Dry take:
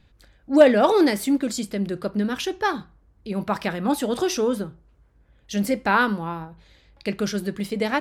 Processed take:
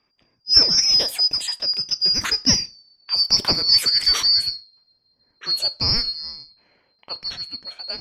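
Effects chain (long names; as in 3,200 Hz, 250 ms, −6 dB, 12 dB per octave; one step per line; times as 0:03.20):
band-splitting scrambler in four parts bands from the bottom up 2341
source passing by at 0:03.16, 25 m/s, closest 29 metres
low-pass that shuts in the quiet parts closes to 2,400 Hz, open at −25 dBFS
level +7 dB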